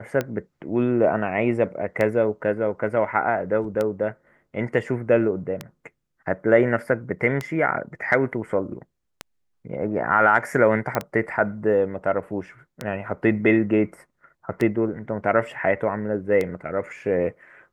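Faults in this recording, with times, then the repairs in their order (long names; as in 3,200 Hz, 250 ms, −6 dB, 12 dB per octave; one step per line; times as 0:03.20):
scratch tick 33 1/3 rpm −12 dBFS
0:10.95: click −9 dBFS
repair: click removal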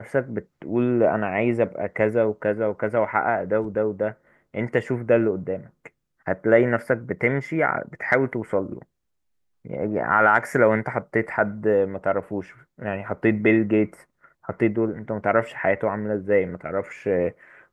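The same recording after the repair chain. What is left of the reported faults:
none of them is left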